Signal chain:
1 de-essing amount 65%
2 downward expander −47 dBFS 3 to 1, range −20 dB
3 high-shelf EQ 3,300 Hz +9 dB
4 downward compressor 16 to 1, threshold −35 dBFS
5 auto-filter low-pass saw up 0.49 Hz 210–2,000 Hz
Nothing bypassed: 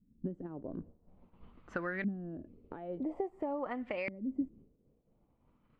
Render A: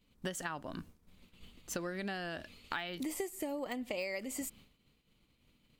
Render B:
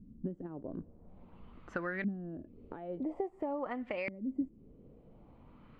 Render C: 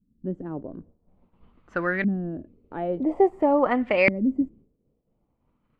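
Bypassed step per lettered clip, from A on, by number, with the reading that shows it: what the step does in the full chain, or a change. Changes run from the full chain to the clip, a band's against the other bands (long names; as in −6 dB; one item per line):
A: 5, 2 kHz band +4.0 dB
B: 2, change in momentary loudness spread +12 LU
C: 4, average gain reduction 11.0 dB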